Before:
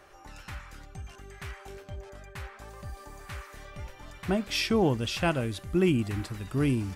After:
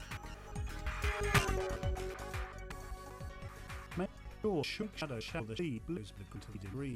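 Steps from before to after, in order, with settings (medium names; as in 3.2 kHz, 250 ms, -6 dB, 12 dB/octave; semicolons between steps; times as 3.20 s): slices played last to first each 182 ms, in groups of 3; Doppler pass-by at 1.41 s, 18 m/s, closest 2.4 m; hum 50 Hz, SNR 17 dB; small resonant body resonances 440/1200/2400 Hz, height 8 dB, ringing for 100 ms; in parallel at -1 dB: compression, threshold -60 dBFS, peak gain reduction 21 dB; on the sum: trim +13 dB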